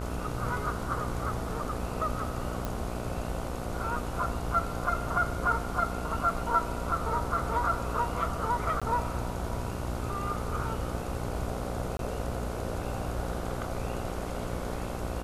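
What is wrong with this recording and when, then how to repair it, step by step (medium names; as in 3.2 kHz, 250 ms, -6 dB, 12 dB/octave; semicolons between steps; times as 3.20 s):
buzz 60 Hz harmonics 25 -36 dBFS
2.65 s: pop -18 dBFS
8.80–8.82 s: dropout 16 ms
11.97–11.99 s: dropout 22 ms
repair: de-click; de-hum 60 Hz, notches 25; interpolate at 8.80 s, 16 ms; interpolate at 11.97 s, 22 ms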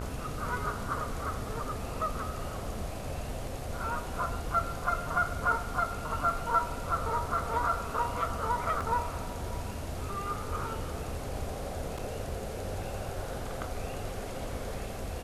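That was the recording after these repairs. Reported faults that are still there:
nothing left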